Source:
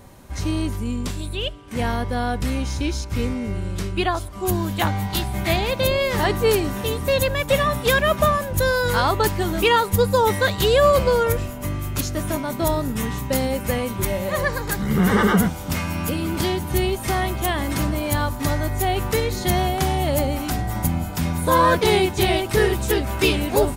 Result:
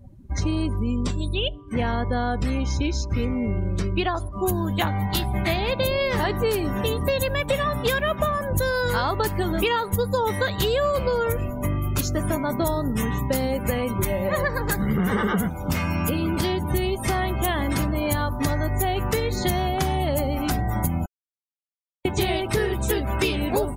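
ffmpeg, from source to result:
ffmpeg -i in.wav -filter_complex "[0:a]asplit=3[link_01][link_02][link_03];[link_01]atrim=end=21.06,asetpts=PTS-STARTPTS,afade=type=out:start_time=21.056:duration=0.004:curve=hsin[link_04];[link_02]atrim=start=21.06:end=22.05,asetpts=PTS-STARTPTS,volume=0[link_05];[link_03]atrim=start=22.05,asetpts=PTS-STARTPTS,afade=type=in:duration=0.004:curve=hsin[link_06];[link_04][link_05][link_06]concat=n=3:v=0:a=1,afftdn=noise_reduction=28:noise_floor=-37,acompressor=threshold=-24dB:ratio=6,volume=4dB" out.wav

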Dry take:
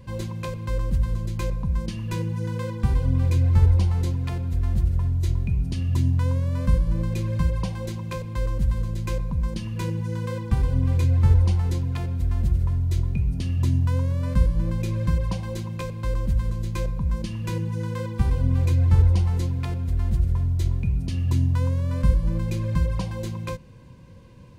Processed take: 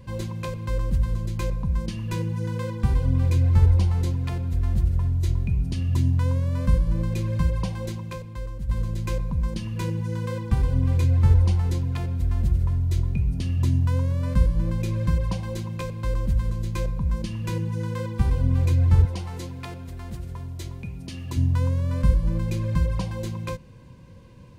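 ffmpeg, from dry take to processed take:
ffmpeg -i in.wav -filter_complex "[0:a]asettb=1/sr,asplit=3[link_01][link_02][link_03];[link_01]atrim=end=19.054[link_04];[link_02]atrim=start=19.05:end=21.37,asetpts=PTS-STARTPTS,afade=type=in:duration=0.004:curve=qsin,afade=type=out:start_time=2.316:duration=0.004:curve=qsin,highpass=frequency=330:poles=1[link_05];[link_03]atrim=start=21.366[link_06];[link_04][link_05]acrossfade=duration=0.004:curve1=hsin:curve2=qsin[link_07];[link_07][link_06]acrossfade=duration=0.004:curve1=qsin:curve2=hsin,asplit=2[link_08][link_09];[link_08]atrim=end=8.69,asetpts=PTS-STARTPTS,afade=type=out:start_time=7.9:duration=0.79:curve=qua:silence=0.354813[link_10];[link_09]atrim=start=8.69,asetpts=PTS-STARTPTS,afade=type=in:duration=0.004:curve=hsin:silence=0.354813[link_11];[link_10][link_11]concat=n=2:v=0:a=1" out.wav

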